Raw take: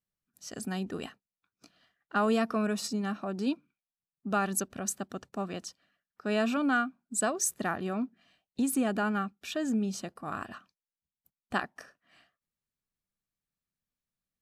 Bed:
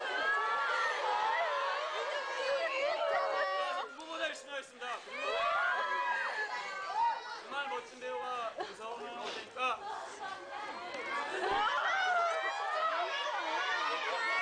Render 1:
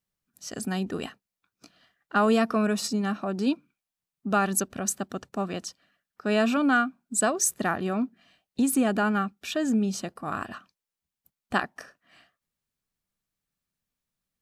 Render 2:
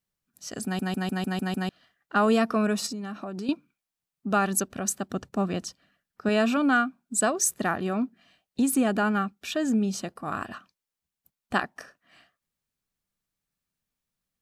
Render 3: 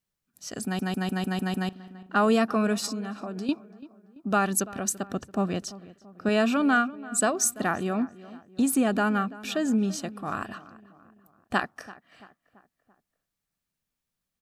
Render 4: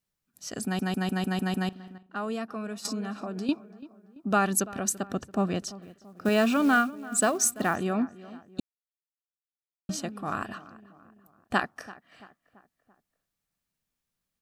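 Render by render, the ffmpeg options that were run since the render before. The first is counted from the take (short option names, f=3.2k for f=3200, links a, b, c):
-af "volume=5dB"
-filter_complex "[0:a]asettb=1/sr,asplit=3[a][b][c];[a]atrim=end=2.864[d];[b]atrim=start=2.86:end=3.49,asetpts=PTS-STARTPTS,afade=t=in:d=0.004:c=qsin,afade=t=out:st=0.626:d=0.004:c=qsin,acompressor=threshold=-31dB:ratio=6:attack=3.2:release=140:knee=1:detection=peak[e];[c]atrim=start=3.486[f];[d][e]acrossfade=d=0.004:c1=hsin:c2=qsin[g];[g][f]acrossfade=d=0.004:c1=qsin:c2=hsin,asettb=1/sr,asplit=3[h][i][j];[h]atrim=end=5.094[k];[i]atrim=start=5.09:end=6.29,asetpts=PTS-STARTPTS,afade=t=in:d=0.004:c=qsin,afade=t=out:st=1.196:d=0.004:c=qsin,lowshelf=f=270:g=7.5[l];[j]atrim=start=6.286[m];[k][l]acrossfade=d=0.004:c1=hsin:c2=qsin[n];[n][m]acrossfade=d=0.004:c1=qsin:c2=hsin,asplit=8[o][p][q][r][s][t][u][v];[o]atrim=end=0.792[w];[p]atrim=start=0.638:end=0.792[x];[q]atrim=start=0.638:end=0.792[y];[r]atrim=start=0.638:end=0.792[z];[s]atrim=start=0.638:end=0.792[aa];[t]atrim=start=0.638:end=0.792[ab];[u]atrim=start=0.638:end=0.792[ac];[v]atrim=start=1.688[ad];[w][x]acrossfade=d=0.004:c1=hsin:c2=hsin[ae];[ae][y]acrossfade=d=0.004:c1=hsin:c2=hsin[af];[af][z]acrossfade=d=0.004:c1=hsin:c2=hsin[ag];[ag][aa]acrossfade=d=0.004:c1=hsin:c2=hsin[ah];[ah][ab]acrossfade=d=0.004:c1=hsin:c2=hsin[ai];[ai][ac]acrossfade=d=0.004:c1=hsin:c2=hsin[aj];[aj][ad]acrossfade=d=0.004:c1=hsin:c2=hsin"
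-filter_complex "[0:a]asplit=2[a][b];[b]adelay=337,lowpass=f=2k:p=1,volume=-18dB,asplit=2[c][d];[d]adelay=337,lowpass=f=2k:p=1,volume=0.52,asplit=2[e][f];[f]adelay=337,lowpass=f=2k:p=1,volume=0.52,asplit=2[g][h];[h]adelay=337,lowpass=f=2k:p=1,volume=0.52[i];[a][c][e][g][i]amix=inputs=5:normalize=0"
-filter_complex "[0:a]asettb=1/sr,asplit=3[a][b][c];[a]atrim=end=5.824[d];[b]atrim=start=5.82:end=7.76,asetpts=PTS-STARTPTS,afade=t=in:d=0.004:c=qsin,afade=t=out:st=1.936:d=0.004:c=qsin,acrusher=bits=6:mode=log:mix=0:aa=0.000001[e];[c]atrim=start=7.756[f];[d][e]acrossfade=d=0.004:c1=hsin:c2=qsin[g];[g][f]acrossfade=d=0.004:c1=qsin:c2=hsin,asplit=5[h][i][j][k][l];[h]atrim=end=1.982[m];[i]atrim=start=1.978:end=2.852,asetpts=PTS-STARTPTS,volume=-11dB[n];[j]atrim=start=2.848:end=8.6,asetpts=PTS-STARTPTS,afade=t=out:st=5.748:d=0.004:c=hsin[o];[k]atrim=start=8.6:end=9.89,asetpts=PTS-STARTPTS,volume=0[p];[l]atrim=start=9.89,asetpts=PTS-STARTPTS,afade=t=in:d=0.004:c=hsin[q];[m][n]acrossfade=d=0.004:c1=hsin:c2=hsin[r];[o][p][q]concat=n=3:v=0:a=1[s];[r][s]acrossfade=d=0.004:c1=hsin:c2=hsin"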